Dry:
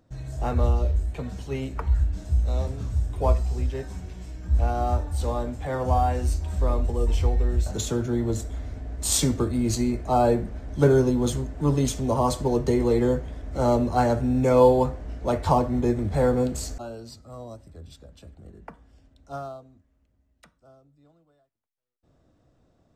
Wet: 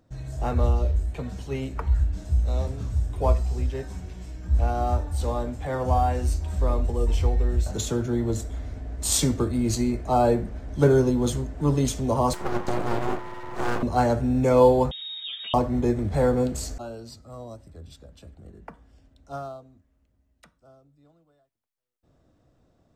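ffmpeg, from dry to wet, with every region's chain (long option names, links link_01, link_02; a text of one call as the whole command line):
ffmpeg -i in.wav -filter_complex "[0:a]asettb=1/sr,asplit=3[link_01][link_02][link_03];[link_01]atrim=end=12.334[link_04];[link_02]atrim=start=12.33:end=13.83,asetpts=PTS-STARTPTS,afade=type=in:duration=0.004:curve=qsin,afade=type=out:start_time=1.496:duration=0.004:curve=qsin,aeval=exprs='val(0)+0.0224*sin(2*PI*940*n/s)':channel_layout=same,aeval=exprs='val(0)*sin(2*PI*180*n/s)':channel_layout=same,aeval=exprs='abs(val(0))':channel_layout=same[link_05];[link_03]atrim=start=13.826[link_06];[link_04][link_05]acrossfade=duration=0.004:curve1=hsin:curve2=qsin[link_07];[link_07][link_06]acrossfade=duration=0.004:curve1=qsin:curve2=hsin,asettb=1/sr,asplit=3[link_08][link_09][link_10];[link_08]atrim=end=14.914[link_11];[link_09]atrim=start=14.91:end=15.54,asetpts=PTS-STARTPTS,afade=type=in:duration=0.004:curve=qsin,afade=type=out:start_time=0.626:duration=0.004:curve=qsin,acompressor=threshold=-33dB:ratio=6:attack=3.2:release=140:knee=1:detection=peak,aecho=1:1:4.5:0.43,atrim=end_sample=27783,lowpass=frequency=3200:width_type=q:width=0.5098,lowpass=frequency=3200:width_type=q:width=0.6013,lowpass=frequency=3200:width_type=q:width=0.9,lowpass=frequency=3200:width_type=q:width=2.563,afreqshift=-3800[link_12];[link_10]atrim=start=15.536[link_13];[link_11][link_12]acrossfade=duration=0.004:curve1=hsin:curve2=qsin[link_14];[link_14][link_13]acrossfade=duration=0.004:curve1=qsin:curve2=hsin" out.wav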